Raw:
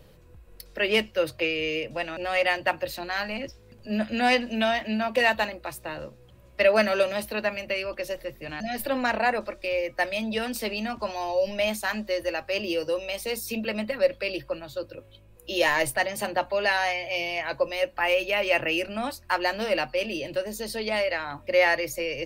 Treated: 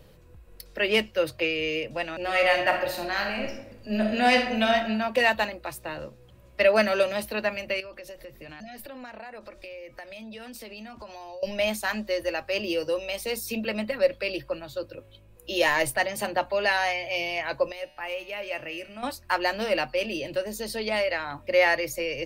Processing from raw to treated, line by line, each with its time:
2.21–4.74 reverb throw, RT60 0.82 s, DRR 2 dB
7.8–11.43 compressor, threshold -39 dBFS
17.72–19.03 resonator 150 Hz, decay 1.4 s, mix 70%

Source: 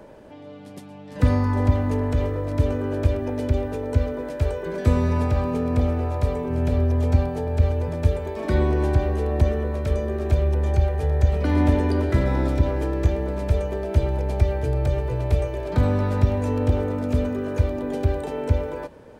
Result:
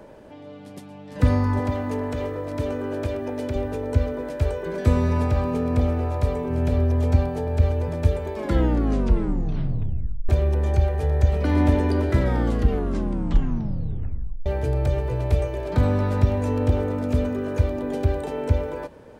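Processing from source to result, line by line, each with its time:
1.59–3.56 HPF 230 Hz 6 dB/oct
8.35 tape stop 1.94 s
12.19 tape stop 2.27 s

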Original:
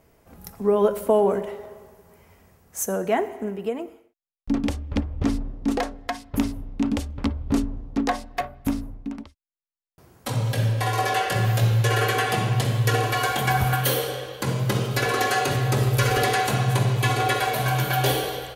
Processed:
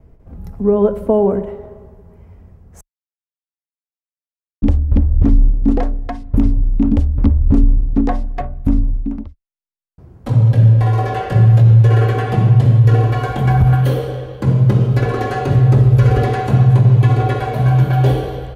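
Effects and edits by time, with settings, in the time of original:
2.81–4.62 mute
whole clip: gate with hold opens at -49 dBFS; tilt -4.5 dB/oct; maximiser +2 dB; gain -2 dB

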